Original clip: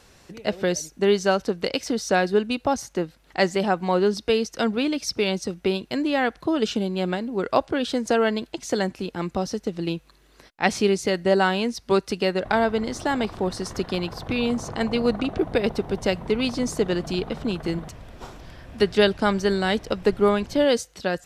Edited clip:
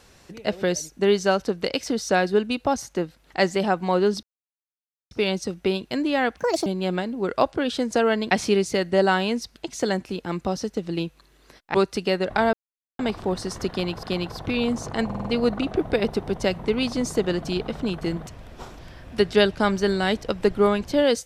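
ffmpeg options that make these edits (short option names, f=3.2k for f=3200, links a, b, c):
-filter_complex "[0:a]asplit=15[a][b][c][d][e][f][g][h][i][j][k][l][m][n][o];[a]atrim=end=4.23,asetpts=PTS-STARTPTS,afade=t=out:st=4.226:d=0.004:c=hsin[p];[b]atrim=start=4.23:end=5.11,asetpts=PTS-STARTPTS,volume=0[q];[c]atrim=start=5.11:end=6.374,asetpts=PTS-STARTPTS,afade=t=in:d=0.004:c=hsin[r];[d]atrim=start=6.37:end=6.81,asetpts=PTS-STARTPTS,asetrate=66591,aresample=44100,atrim=end_sample=12850,asetpts=PTS-STARTPTS[s];[e]atrim=start=6.806:end=8.462[t];[f]atrim=start=10.638:end=11.892[u];[g]atrim=start=8.458:end=10.642[v];[h]atrim=start=11.888:end=12.68,asetpts=PTS-STARTPTS,afade=t=out:st=0.788:d=0.004:c=hsin[w];[i]atrim=start=12.68:end=13.14,asetpts=PTS-STARTPTS,volume=0[x];[j]atrim=start=13.14:end=14.182,asetpts=PTS-STARTPTS,afade=t=in:d=0.004:c=hsin[y];[k]atrim=start=13.848:end=14.922[z];[l]atrim=start=14.868:end=14.922[aa];[m]atrim=start=14.868:end=14.922[ab];[n]atrim=start=14.868:end=14.922[ac];[o]atrim=start=14.868[ad];[p][q][r]concat=n=3:v=0:a=1[ae];[ae][s]acrossfade=d=0.004:c1=hsin:c2=hsin[af];[af][t]acrossfade=d=0.004:c1=hsin:c2=hsin[ag];[ag][u]acrossfade=d=0.004:c1=hsin:c2=hsin[ah];[ah][v]acrossfade=d=0.004:c1=hsin:c2=hsin[ai];[w][x][y]concat=n=3:v=0:a=1[aj];[ai][aj]acrossfade=d=0.004:c1=hsin:c2=hsin[ak];[ak][z]acrossfade=d=0.004:c1=hsin:c2=hsin[al];[al][aa]acrossfade=d=0.004:c1=hsin:c2=hsin[am];[am][ab]acrossfade=d=0.004:c1=hsin:c2=hsin[an];[an][ac]acrossfade=d=0.004:c1=hsin:c2=hsin[ao];[ao][ad]acrossfade=d=0.004:c1=hsin:c2=hsin"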